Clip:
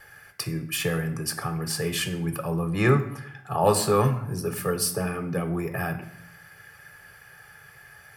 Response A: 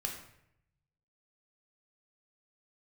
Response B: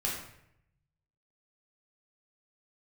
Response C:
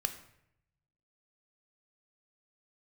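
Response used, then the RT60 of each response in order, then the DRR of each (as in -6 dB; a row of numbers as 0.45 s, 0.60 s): C; 0.75 s, 0.75 s, 0.75 s; 0.5 dB, -5.0 dB, 7.5 dB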